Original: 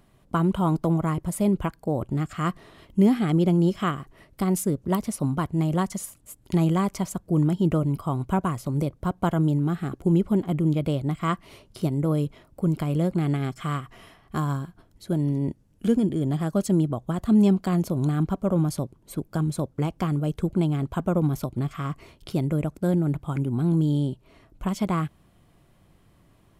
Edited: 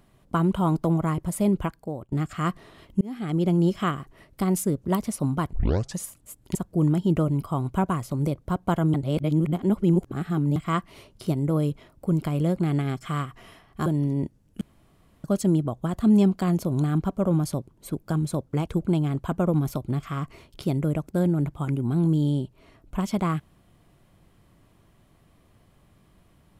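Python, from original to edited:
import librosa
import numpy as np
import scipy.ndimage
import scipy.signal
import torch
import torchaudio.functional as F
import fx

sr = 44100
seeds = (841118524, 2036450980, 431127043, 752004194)

y = fx.edit(x, sr, fx.fade_out_to(start_s=1.62, length_s=0.5, floor_db=-20.5),
    fx.fade_in_span(start_s=3.01, length_s=0.75, curve='qsin'),
    fx.tape_start(start_s=5.53, length_s=0.47),
    fx.cut(start_s=6.55, length_s=0.55),
    fx.reverse_span(start_s=9.49, length_s=1.62),
    fx.cut(start_s=14.41, length_s=0.7),
    fx.room_tone_fill(start_s=15.86, length_s=0.63),
    fx.cut(start_s=19.92, length_s=0.43), tone=tone)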